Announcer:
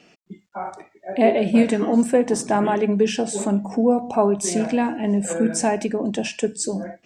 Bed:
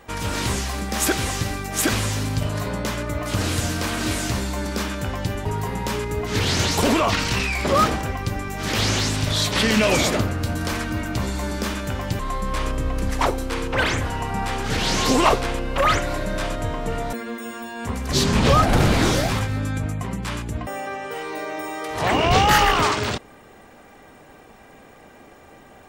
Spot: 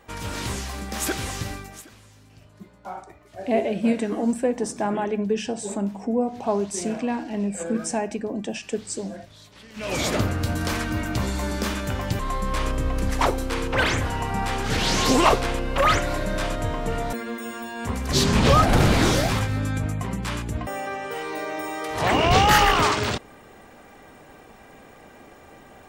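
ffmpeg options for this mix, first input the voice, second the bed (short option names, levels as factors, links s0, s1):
-filter_complex "[0:a]adelay=2300,volume=0.531[s0];[1:a]volume=11.9,afade=t=out:st=1.52:d=0.32:silence=0.0794328,afade=t=in:st=9.74:d=0.5:silence=0.0446684[s1];[s0][s1]amix=inputs=2:normalize=0"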